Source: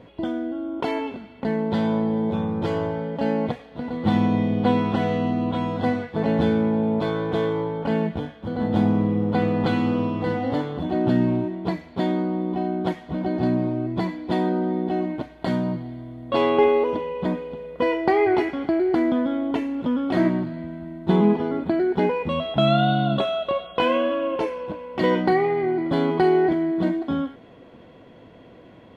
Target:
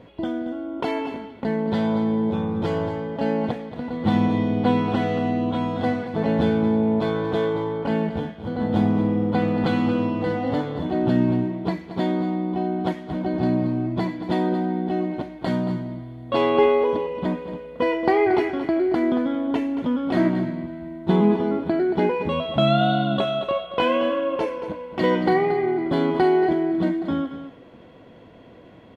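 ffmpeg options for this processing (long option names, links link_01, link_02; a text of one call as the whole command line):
ffmpeg -i in.wav -af "aecho=1:1:228:0.266" out.wav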